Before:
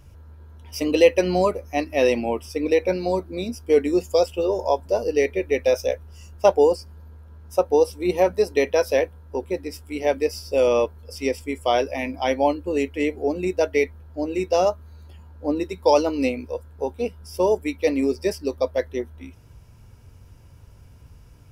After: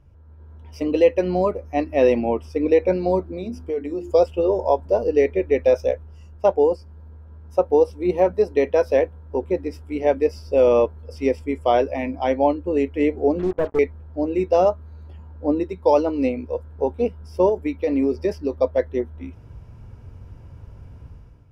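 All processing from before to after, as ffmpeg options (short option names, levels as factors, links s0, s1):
-filter_complex "[0:a]asettb=1/sr,asplit=3[s0][s1][s2];[s0]atrim=end=3.324[s3];[s1]atrim=start=3.32:end=4.11,asetpts=PTS-STARTPTS,afade=t=in:d=0.004:c=qsin,afade=t=out:st=0.786:d=0.004:c=qsin,bandreject=f=50:t=h:w=6,bandreject=f=100:t=h:w=6,bandreject=f=150:t=h:w=6,bandreject=f=200:t=h:w=6,bandreject=f=250:t=h:w=6,bandreject=f=300:t=h:w=6,bandreject=f=350:t=h:w=6,acompressor=threshold=0.0282:ratio=2.5:attack=3.2:release=140:knee=1:detection=peak[s4];[s2]atrim=start=4.106[s5];[s3][s4]acrossfade=d=0.004:c1=hsin:c2=qsin[s6];[s6][s5]acrossfade=d=0.004:c1=qsin:c2=hsin,asettb=1/sr,asplit=3[s7][s8][s9];[s7]atrim=end=13.394[s10];[s8]atrim=start=13.39:end=13.79,asetpts=PTS-STARTPTS,afade=t=in:d=0.004:c=qsin,afade=t=out:st=0.396:d=0.004:c=qsin,lowpass=f=1100:w=0.5412,lowpass=f=1100:w=1.3066,aeval=exprs='(tanh(8.91*val(0)+0.35)-tanh(0.35))/8.91':c=same,acrusher=bits=5:mix=0:aa=0.5[s11];[s9]atrim=start=13.786[s12];[s10][s11]acrossfade=d=0.004:c1=hsin:c2=qsin[s13];[s13][s12]acrossfade=d=0.004:c1=qsin:c2=hsin,asettb=1/sr,asplit=3[s14][s15][s16];[s14]atrim=end=17.494[s17];[s15]atrim=start=17.49:end=18.61,asetpts=PTS-STARTPTS,afade=t=in:d=0.004:c=qsin,afade=t=out:st=1.116:d=0.004:c=qsin,equalizer=f=8500:t=o:w=0.27:g=-7,acompressor=threshold=0.0891:ratio=4:attack=3.2:release=140:knee=1:detection=peak[s18];[s16]atrim=start=18.606[s19];[s17][s18]acrossfade=d=0.004:c1=hsin:c2=qsin[s20];[s20][s19]acrossfade=d=0.004:c1=qsin:c2=hsin,lowpass=f=1100:p=1,dynaudnorm=f=130:g=7:m=3.76,volume=0.596"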